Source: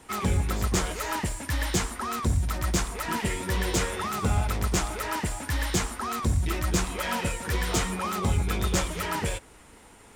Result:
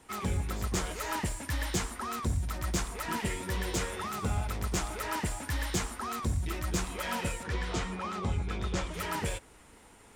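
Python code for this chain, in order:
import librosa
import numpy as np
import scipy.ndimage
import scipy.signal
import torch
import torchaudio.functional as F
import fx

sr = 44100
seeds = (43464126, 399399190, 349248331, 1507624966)

y = fx.rider(x, sr, range_db=10, speed_s=0.5)
y = fx.air_absorb(y, sr, metres=81.0, at=(7.43, 8.94))
y = y * librosa.db_to_amplitude(-5.5)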